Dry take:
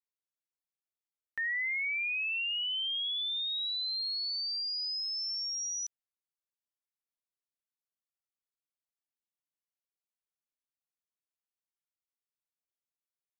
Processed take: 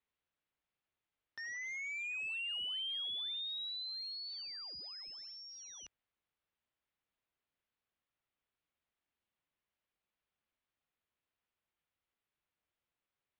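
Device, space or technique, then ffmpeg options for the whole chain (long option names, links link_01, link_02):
synthesiser wavefolder: -af "equalizer=frequency=62:width=0.84:gain=5.5,aeval=exprs='0.015*(abs(mod(val(0)/0.015+3,4)-2)-1)':channel_layout=same,lowpass=frequency=3400:width=0.5412,lowpass=frequency=3400:width=1.3066,volume=8.5dB"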